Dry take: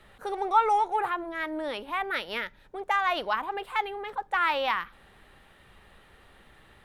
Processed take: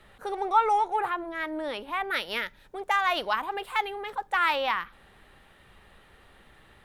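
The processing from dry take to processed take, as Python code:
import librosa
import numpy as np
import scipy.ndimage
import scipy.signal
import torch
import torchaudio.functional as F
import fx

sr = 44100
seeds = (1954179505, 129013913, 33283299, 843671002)

y = fx.high_shelf(x, sr, hz=3500.0, db=7.0, at=(2.1, 4.56))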